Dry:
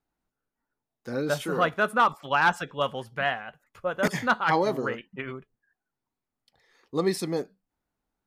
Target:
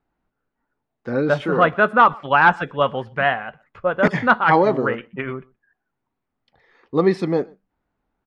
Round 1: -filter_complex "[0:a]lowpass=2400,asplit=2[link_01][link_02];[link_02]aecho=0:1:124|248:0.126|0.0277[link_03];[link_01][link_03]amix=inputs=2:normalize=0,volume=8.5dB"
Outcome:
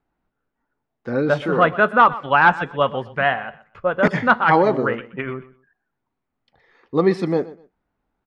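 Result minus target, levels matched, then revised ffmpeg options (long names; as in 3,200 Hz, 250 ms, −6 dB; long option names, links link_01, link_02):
echo-to-direct +9 dB
-filter_complex "[0:a]lowpass=2400,asplit=2[link_01][link_02];[link_02]aecho=0:1:124:0.0447[link_03];[link_01][link_03]amix=inputs=2:normalize=0,volume=8.5dB"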